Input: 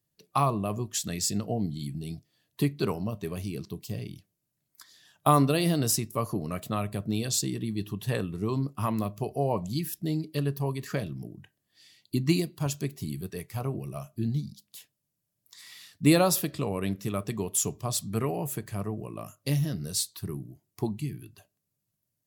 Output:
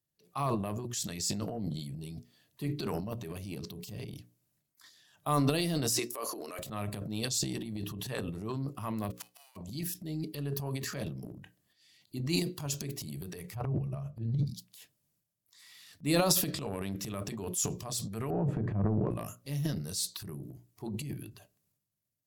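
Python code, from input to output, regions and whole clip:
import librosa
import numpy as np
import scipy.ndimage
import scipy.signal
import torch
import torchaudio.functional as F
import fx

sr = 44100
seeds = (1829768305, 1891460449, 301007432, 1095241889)

y = fx.chain(x, sr, fx.highpass(hz=340.0, slope=24),
    fx.band_squash(depth_pct=40), at=(5.92, 6.59))
y = fx.envelope_flatten(y, sr, power=0.3, at=(9.1, 9.55), fade=0.02)
y = fx.highpass(y, sr, hz=800.0, slope=24, at=(9.1, 9.55), fade=0.02)
y = fx.gate_flip(y, sr, shuts_db=-24.0, range_db=-32, at=(9.1, 9.55), fade=0.02)
y = fx.chain(y, sr, fx.lowpass(hz=1400.0, slope=6),
    fx.low_shelf_res(hz=180.0, db=6.5, q=1.5),
    fx.hum_notches(base_hz=50, count=6), at=(13.55, 14.46))
y = fx.chain(y, sr, fx.low_shelf(hz=500.0, db=9.5),
    fx.leveller(passes=1),
    fx.lowpass(hz=1200.0, slope=12), at=(18.3, 19.11))
y = fx.hum_notches(y, sr, base_hz=60, count=9)
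y = fx.transient(y, sr, attack_db=-6, sustain_db=11)
y = fx.dynamic_eq(y, sr, hz=5600.0, q=0.97, threshold_db=-43.0, ratio=4.0, max_db=5)
y = y * 10.0 ** (-6.5 / 20.0)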